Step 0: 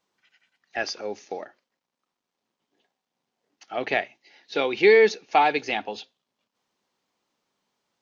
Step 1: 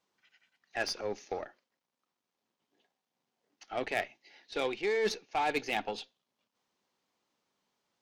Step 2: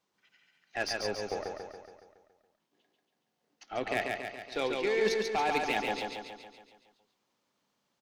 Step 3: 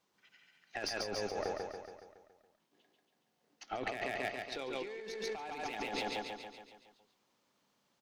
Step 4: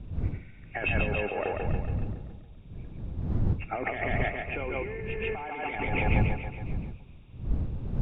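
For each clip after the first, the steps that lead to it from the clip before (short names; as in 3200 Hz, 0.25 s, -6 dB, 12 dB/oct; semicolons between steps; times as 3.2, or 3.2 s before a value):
reverse; compressor 8:1, threshold -24 dBFS, peak gain reduction 12.5 dB; reverse; added harmonics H 6 -22 dB, 8 -20 dB, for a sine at -14.5 dBFS; gain -3.5 dB
bell 120 Hz +2.5 dB 2.1 oct; on a send: feedback echo 0.14 s, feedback 57%, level -3.5 dB
negative-ratio compressor -37 dBFS, ratio -1; gain -2.5 dB
nonlinear frequency compression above 2100 Hz 4:1; wind noise 110 Hz -38 dBFS; gain +6.5 dB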